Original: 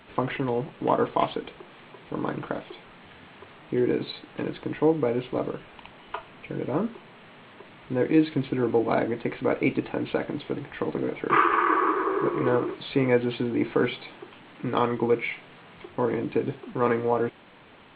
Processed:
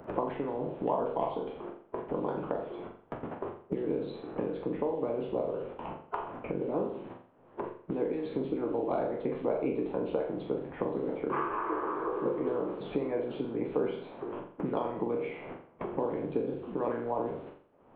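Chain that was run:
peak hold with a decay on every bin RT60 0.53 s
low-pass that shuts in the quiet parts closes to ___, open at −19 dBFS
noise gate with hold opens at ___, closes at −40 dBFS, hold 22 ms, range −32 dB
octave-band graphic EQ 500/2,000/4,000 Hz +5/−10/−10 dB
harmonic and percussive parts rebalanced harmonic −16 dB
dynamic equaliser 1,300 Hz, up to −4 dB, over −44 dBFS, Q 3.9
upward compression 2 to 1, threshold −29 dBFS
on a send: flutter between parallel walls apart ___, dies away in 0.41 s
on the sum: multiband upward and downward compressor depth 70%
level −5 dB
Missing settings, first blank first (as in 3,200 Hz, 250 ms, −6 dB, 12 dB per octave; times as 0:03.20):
1,400 Hz, −39 dBFS, 7.3 metres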